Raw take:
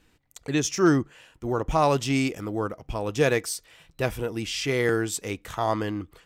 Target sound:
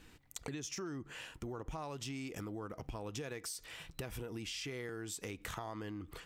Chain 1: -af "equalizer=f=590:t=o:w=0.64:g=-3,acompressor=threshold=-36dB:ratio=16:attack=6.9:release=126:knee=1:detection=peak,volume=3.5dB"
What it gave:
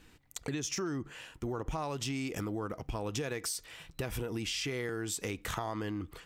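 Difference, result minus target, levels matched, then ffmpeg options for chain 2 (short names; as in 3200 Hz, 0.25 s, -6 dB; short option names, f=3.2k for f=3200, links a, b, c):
compressor: peak gain reduction -7 dB
-af "equalizer=f=590:t=o:w=0.64:g=-3,acompressor=threshold=-43.5dB:ratio=16:attack=6.9:release=126:knee=1:detection=peak,volume=3.5dB"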